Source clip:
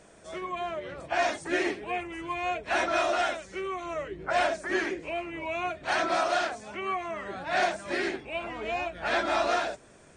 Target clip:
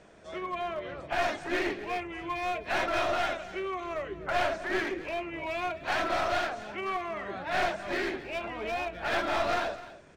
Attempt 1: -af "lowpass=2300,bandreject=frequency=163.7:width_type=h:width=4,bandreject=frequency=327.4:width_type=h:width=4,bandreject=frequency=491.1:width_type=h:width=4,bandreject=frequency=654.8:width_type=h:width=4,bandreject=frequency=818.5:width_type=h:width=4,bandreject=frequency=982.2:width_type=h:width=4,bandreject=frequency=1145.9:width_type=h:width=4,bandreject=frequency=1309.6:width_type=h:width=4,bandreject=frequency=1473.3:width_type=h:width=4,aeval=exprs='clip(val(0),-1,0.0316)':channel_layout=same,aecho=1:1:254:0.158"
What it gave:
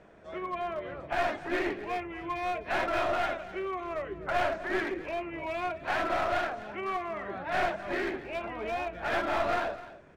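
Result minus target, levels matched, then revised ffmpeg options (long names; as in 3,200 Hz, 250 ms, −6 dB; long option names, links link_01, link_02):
4,000 Hz band −4.0 dB
-af "lowpass=4600,bandreject=frequency=163.7:width_type=h:width=4,bandreject=frequency=327.4:width_type=h:width=4,bandreject=frequency=491.1:width_type=h:width=4,bandreject=frequency=654.8:width_type=h:width=4,bandreject=frequency=818.5:width_type=h:width=4,bandreject=frequency=982.2:width_type=h:width=4,bandreject=frequency=1145.9:width_type=h:width=4,bandreject=frequency=1309.6:width_type=h:width=4,bandreject=frequency=1473.3:width_type=h:width=4,aeval=exprs='clip(val(0),-1,0.0316)':channel_layout=same,aecho=1:1:254:0.158"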